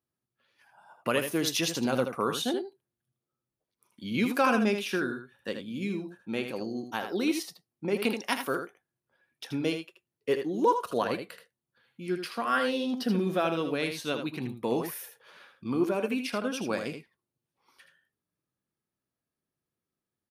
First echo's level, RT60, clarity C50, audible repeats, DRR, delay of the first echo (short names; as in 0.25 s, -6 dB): -7.5 dB, none, none, 1, none, 79 ms